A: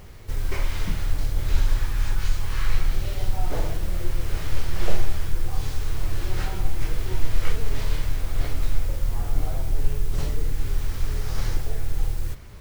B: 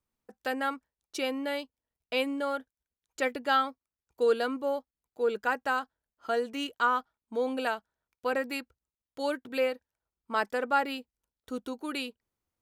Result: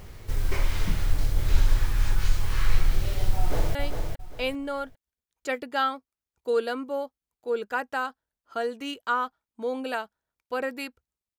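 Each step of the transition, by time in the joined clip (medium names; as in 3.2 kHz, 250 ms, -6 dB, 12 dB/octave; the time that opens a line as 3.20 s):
A
3.39–3.75 s: echo throw 400 ms, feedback 25%, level -5.5 dB
3.75 s: go over to B from 1.48 s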